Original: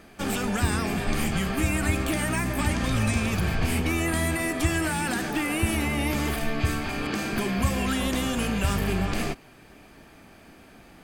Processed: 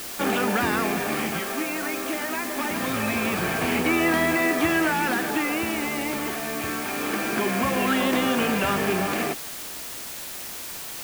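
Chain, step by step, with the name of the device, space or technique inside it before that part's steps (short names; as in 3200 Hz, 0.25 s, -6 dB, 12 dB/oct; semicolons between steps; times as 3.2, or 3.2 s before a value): 1.39–2.71 elliptic high-pass 220 Hz; shortwave radio (BPF 270–2700 Hz; tremolo 0.24 Hz, depth 53%; white noise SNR 10 dB); gain +7.5 dB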